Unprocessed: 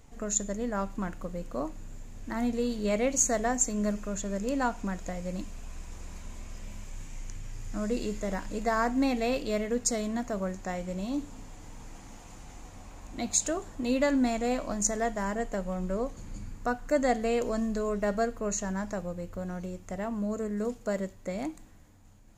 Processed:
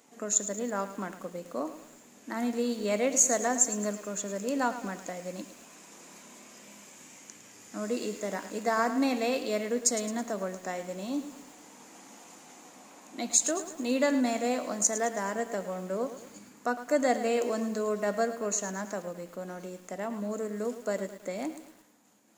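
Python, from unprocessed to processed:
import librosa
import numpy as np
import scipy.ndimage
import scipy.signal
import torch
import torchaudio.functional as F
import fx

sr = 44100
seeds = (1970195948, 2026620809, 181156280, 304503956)

y = scipy.signal.sosfilt(scipy.signal.butter(4, 220.0, 'highpass', fs=sr, output='sos'), x)
y = fx.high_shelf(y, sr, hz=6300.0, db=5.0)
y = fx.echo_crushed(y, sr, ms=108, feedback_pct=55, bits=8, wet_db=-12)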